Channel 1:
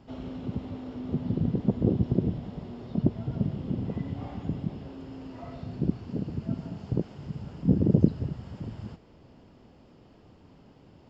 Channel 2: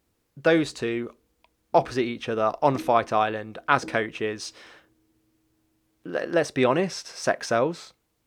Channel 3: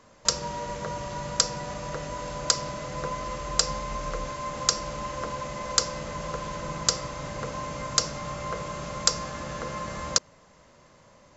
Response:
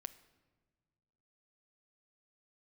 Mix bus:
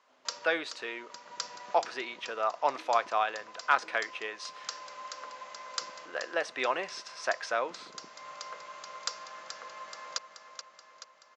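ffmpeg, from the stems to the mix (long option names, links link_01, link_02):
-filter_complex "[0:a]volume=-17dB[link_01];[1:a]volume=-4.5dB,asplit=3[link_02][link_03][link_04];[link_03]volume=-9.5dB[link_05];[2:a]volume=-8dB,asplit=2[link_06][link_07];[link_07]volume=-9dB[link_08];[link_04]apad=whole_len=501071[link_09];[link_06][link_09]sidechaincompress=threshold=-42dB:ratio=8:attack=8.2:release=447[link_10];[3:a]atrim=start_sample=2205[link_11];[link_05][link_11]afir=irnorm=-1:irlink=0[link_12];[link_08]aecho=0:1:429|858|1287|1716|2145|2574|3003|3432|3861|4290:1|0.6|0.36|0.216|0.13|0.0778|0.0467|0.028|0.0168|0.0101[link_13];[link_01][link_02][link_10][link_12][link_13]amix=inputs=5:normalize=0,asoftclip=type=hard:threshold=-9dB,highpass=790,lowpass=4700"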